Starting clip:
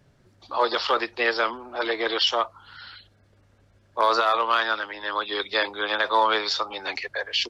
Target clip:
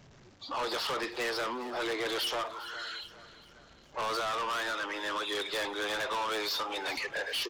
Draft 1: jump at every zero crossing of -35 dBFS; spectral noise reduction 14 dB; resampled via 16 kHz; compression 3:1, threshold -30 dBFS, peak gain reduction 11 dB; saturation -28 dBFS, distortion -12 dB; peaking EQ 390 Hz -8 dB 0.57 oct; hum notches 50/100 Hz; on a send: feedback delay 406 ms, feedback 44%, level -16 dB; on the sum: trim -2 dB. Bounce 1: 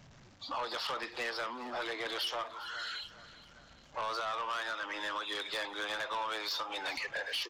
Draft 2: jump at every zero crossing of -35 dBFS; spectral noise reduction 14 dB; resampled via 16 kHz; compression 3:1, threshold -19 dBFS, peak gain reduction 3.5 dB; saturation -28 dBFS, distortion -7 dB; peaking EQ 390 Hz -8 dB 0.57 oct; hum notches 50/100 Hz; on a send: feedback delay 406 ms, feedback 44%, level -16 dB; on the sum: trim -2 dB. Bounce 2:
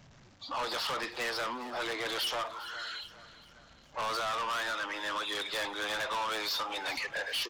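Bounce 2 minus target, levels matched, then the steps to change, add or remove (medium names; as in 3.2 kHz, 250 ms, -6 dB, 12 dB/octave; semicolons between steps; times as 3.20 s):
500 Hz band -3.0 dB
remove: peaking EQ 390 Hz -8 dB 0.57 oct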